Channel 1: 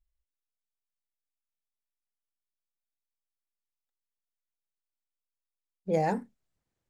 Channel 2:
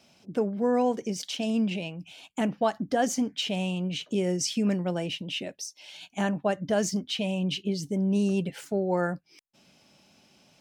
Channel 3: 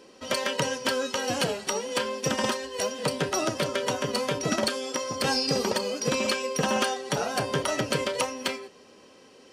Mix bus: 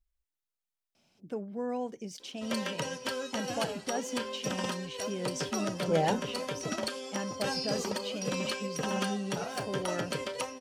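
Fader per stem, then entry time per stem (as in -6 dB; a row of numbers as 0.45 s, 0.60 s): -0.5 dB, -10.0 dB, -8.0 dB; 0.00 s, 0.95 s, 2.20 s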